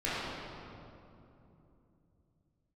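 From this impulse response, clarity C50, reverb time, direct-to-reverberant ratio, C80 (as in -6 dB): -4.5 dB, 2.9 s, -11.0 dB, -2.0 dB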